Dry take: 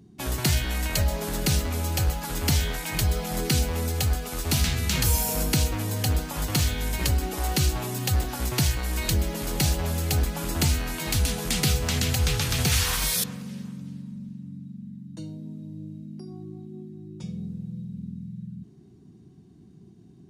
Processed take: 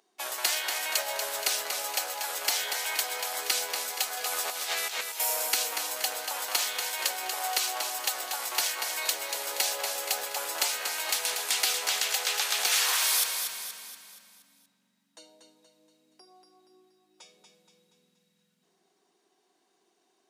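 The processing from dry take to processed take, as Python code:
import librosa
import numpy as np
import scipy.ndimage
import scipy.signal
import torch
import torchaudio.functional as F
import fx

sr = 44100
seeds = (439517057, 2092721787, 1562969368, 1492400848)

y = scipy.signal.sosfilt(scipy.signal.butter(4, 590.0, 'highpass', fs=sr, output='sos'), x)
y = fx.over_compress(y, sr, threshold_db=-33.0, ratio=-0.5, at=(4.17, 5.2))
y = fx.echo_feedback(y, sr, ms=237, feedback_pct=48, wet_db=-6.5)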